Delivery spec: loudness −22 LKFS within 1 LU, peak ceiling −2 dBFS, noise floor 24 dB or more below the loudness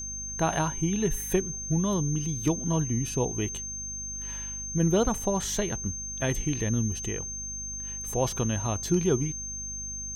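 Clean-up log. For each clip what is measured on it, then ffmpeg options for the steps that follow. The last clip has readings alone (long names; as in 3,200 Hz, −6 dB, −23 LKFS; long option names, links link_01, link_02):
mains hum 50 Hz; hum harmonics up to 250 Hz; level of the hum −41 dBFS; interfering tone 6,300 Hz; level of the tone −34 dBFS; integrated loudness −28.5 LKFS; sample peak −11.5 dBFS; target loudness −22.0 LKFS
→ -af "bandreject=frequency=50:width_type=h:width=4,bandreject=frequency=100:width_type=h:width=4,bandreject=frequency=150:width_type=h:width=4,bandreject=frequency=200:width_type=h:width=4,bandreject=frequency=250:width_type=h:width=4"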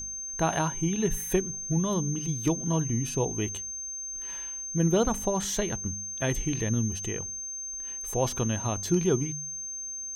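mains hum none found; interfering tone 6,300 Hz; level of the tone −34 dBFS
→ -af "bandreject=frequency=6300:width=30"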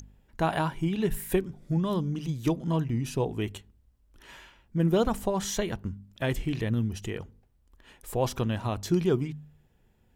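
interfering tone none found; integrated loudness −29.5 LKFS; sample peak −12.5 dBFS; target loudness −22.0 LKFS
→ -af "volume=7.5dB"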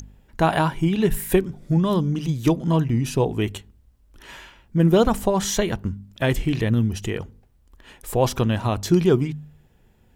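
integrated loudness −22.0 LKFS; sample peak −5.0 dBFS; background noise floor −58 dBFS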